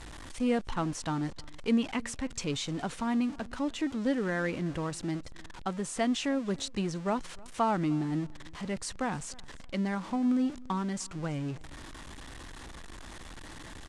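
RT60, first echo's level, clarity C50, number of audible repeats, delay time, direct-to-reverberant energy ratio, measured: no reverb, -24.0 dB, no reverb, 1, 306 ms, no reverb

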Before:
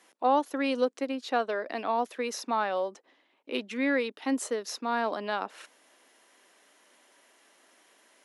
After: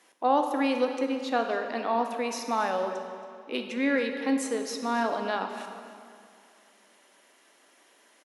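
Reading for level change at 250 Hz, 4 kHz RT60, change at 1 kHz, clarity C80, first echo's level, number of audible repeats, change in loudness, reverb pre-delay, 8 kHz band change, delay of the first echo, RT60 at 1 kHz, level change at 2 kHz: +3.0 dB, 1.8 s, +1.5 dB, 6.5 dB, -17.0 dB, 1, +1.5 dB, 17 ms, +1.0 dB, 275 ms, 2.4 s, +1.0 dB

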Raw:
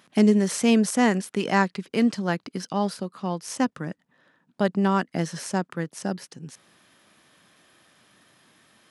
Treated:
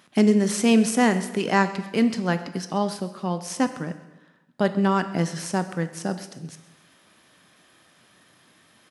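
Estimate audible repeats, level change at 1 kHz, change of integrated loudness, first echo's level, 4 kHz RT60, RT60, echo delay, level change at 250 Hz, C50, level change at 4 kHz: 3, +1.5 dB, +1.0 dB, -20.0 dB, 0.90 s, 0.95 s, 132 ms, +1.0 dB, 12.0 dB, +1.5 dB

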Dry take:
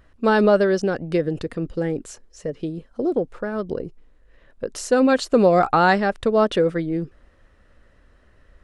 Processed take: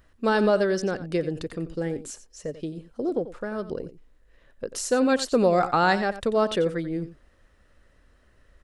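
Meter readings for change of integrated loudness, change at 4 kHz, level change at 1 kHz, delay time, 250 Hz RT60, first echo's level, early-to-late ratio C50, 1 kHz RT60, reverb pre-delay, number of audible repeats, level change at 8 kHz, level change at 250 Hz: -4.5 dB, -1.5 dB, -4.5 dB, 90 ms, no reverb, -14.0 dB, no reverb, no reverb, no reverb, 1, +1.5 dB, -5.0 dB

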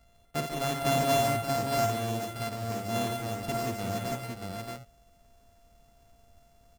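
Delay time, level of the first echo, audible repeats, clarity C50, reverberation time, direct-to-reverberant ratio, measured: 54 ms, -5.5 dB, 5, no reverb, no reverb, no reverb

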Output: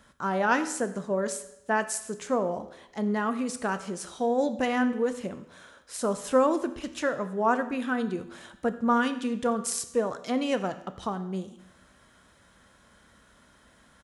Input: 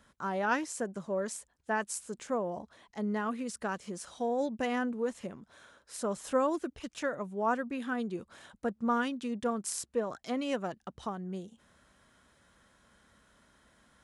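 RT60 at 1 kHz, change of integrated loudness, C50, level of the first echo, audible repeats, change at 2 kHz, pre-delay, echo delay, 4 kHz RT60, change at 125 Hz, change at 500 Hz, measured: 0.85 s, +6.0 dB, 13.0 dB, -21.0 dB, 1, +6.0 dB, 12 ms, 89 ms, 0.80 s, +6.0 dB, +6.0 dB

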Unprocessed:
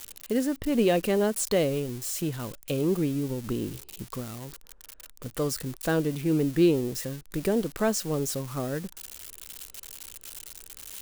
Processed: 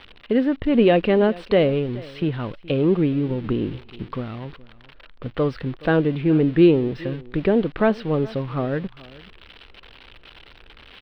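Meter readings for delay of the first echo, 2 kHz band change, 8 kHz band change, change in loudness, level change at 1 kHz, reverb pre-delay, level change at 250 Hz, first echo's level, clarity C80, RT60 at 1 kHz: 422 ms, +7.0 dB, under -30 dB, +6.5 dB, +7.0 dB, no reverb, +7.0 dB, -21.0 dB, no reverb, no reverb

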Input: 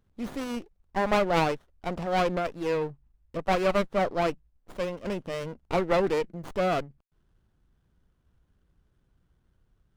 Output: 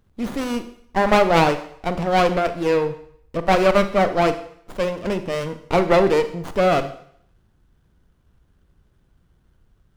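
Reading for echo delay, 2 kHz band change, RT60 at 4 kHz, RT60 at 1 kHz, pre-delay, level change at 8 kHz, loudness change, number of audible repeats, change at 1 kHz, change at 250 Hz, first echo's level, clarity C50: no echo, +8.5 dB, 0.65 s, 0.65 s, 31 ms, +8.5 dB, +8.5 dB, no echo, +8.5 dB, +8.5 dB, no echo, 12.0 dB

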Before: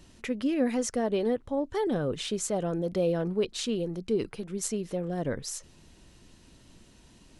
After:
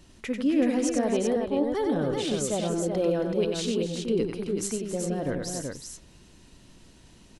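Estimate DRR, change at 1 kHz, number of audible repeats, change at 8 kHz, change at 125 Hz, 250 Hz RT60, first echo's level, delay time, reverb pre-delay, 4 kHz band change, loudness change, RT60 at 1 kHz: no reverb, +2.5 dB, 3, +2.0 dB, +1.5 dB, no reverb, -5.5 dB, 93 ms, no reverb, +2.0 dB, +3.0 dB, no reverb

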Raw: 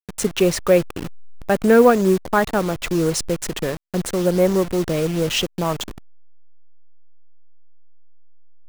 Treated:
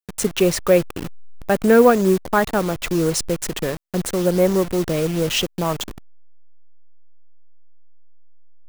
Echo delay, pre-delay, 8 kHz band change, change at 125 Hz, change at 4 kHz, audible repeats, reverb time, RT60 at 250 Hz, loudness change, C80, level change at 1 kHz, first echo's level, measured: no echo, no reverb, +1.0 dB, 0.0 dB, +0.5 dB, no echo, no reverb, no reverb, 0.0 dB, no reverb, 0.0 dB, no echo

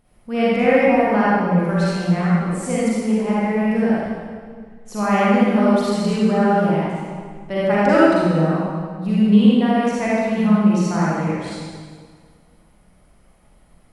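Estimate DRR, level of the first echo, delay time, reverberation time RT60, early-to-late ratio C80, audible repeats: -9.0 dB, no echo, no echo, 1.8 s, -2.5 dB, no echo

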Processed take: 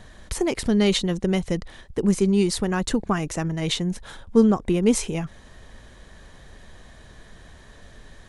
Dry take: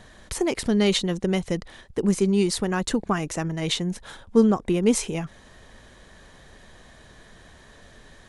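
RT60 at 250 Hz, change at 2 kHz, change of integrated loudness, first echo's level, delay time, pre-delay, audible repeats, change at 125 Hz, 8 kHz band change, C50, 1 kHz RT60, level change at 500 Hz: no reverb, 0.0 dB, +1.0 dB, no echo, no echo, no reverb, no echo, +2.0 dB, 0.0 dB, no reverb, no reverb, +0.5 dB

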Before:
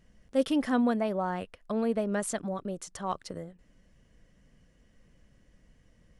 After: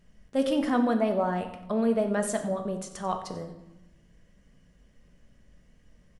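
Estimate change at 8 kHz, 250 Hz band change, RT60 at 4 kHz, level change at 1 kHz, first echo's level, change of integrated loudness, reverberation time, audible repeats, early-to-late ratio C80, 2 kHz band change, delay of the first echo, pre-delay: +1.0 dB, +2.0 dB, 0.75 s, +3.0 dB, -16.0 dB, +2.5 dB, 0.95 s, 1, 11.0 dB, +1.5 dB, 92 ms, 5 ms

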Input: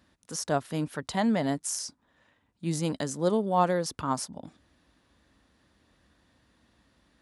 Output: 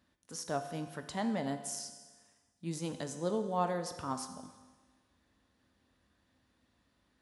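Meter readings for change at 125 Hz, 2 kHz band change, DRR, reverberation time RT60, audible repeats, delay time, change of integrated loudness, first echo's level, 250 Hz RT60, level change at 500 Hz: -8.5 dB, -8.0 dB, 7.0 dB, 1.4 s, no echo, no echo, -8.0 dB, no echo, 1.4 s, -7.5 dB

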